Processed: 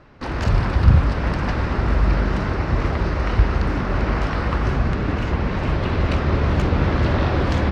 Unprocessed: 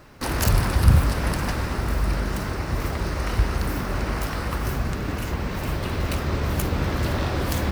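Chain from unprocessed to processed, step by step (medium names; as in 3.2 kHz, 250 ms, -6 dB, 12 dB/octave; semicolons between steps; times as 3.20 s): treble shelf 7.9 kHz -8 dB; level rider gain up to 6 dB; distance through air 150 m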